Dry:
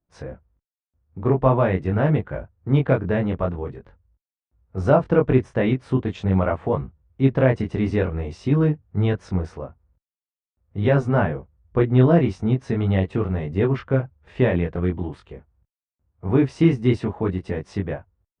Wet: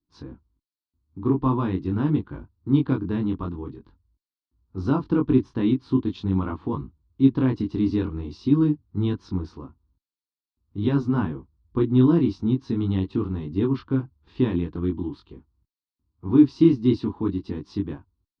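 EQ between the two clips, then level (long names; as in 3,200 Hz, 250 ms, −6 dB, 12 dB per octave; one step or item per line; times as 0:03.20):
drawn EQ curve 180 Hz 0 dB, 300 Hz +11 dB, 600 Hz −18 dB, 1,000 Hz +3 dB, 2,000 Hz −11 dB, 4,300 Hz +10 dB, 8,000 Hz −12 dB
−5.0 dB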